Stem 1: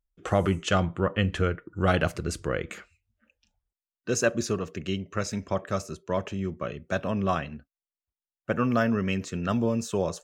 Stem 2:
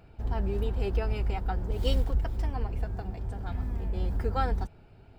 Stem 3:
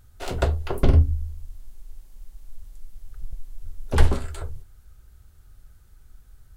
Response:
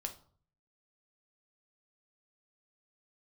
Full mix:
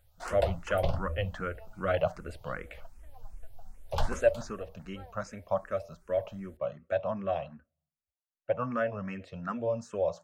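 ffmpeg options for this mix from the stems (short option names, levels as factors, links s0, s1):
-filter_complex "[0:a]lowpass=f=1400:p=1,volume=0.794,asplit=2[s0][s1];[s1]volume=0.141[s2];[1:a]lowpass=3500,adelay=600,volume=0.119[s3];[2:a]volume=0.447,asplit=2[s4][s5];[s5]volume=0.376[s6];[3:a]atrim=start_sample=2205[s7];[s2][s6]amix=inputs=2:normalize=0[s8];[s8][s7]afir=irnorm=-1:irlink=0[s9];[s0][s3][s4][s9]amix=inputs=4:normalize=0,lowshelf=f=470:t=q:w=3:g=-6,asplit=2[s10][s11];[s11]afreqshift=2.6[s12];[s10][s12]amix=inputs=2:normalize=1"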